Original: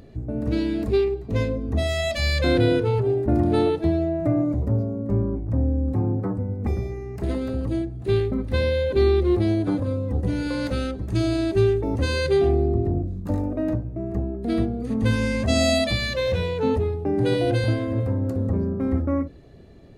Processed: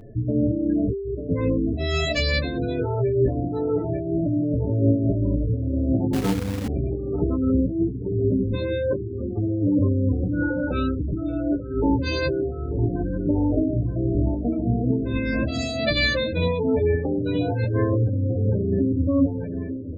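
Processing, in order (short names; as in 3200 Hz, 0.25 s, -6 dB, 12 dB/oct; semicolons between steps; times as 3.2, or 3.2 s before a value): negative-ratio compressor -25 dBFS, ratio -1; comb 6.9 ms, depth 36%; dark delay 0.89 s, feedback 64%, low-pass 1800 Hz, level -10 dB; hard clip -15 dBFS, distortion -32 dB; spectral gate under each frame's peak -20 dB strong; 12.39–12.79 bell 860 Hz -14 dB 0.35 oct; flange 0.11 Hz, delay 8.9 ms, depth 9.3 ms, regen +7%; 6.13–6.68 companded quantiser 4-bit; noise-modulated level, depth 65%; gain +8 dB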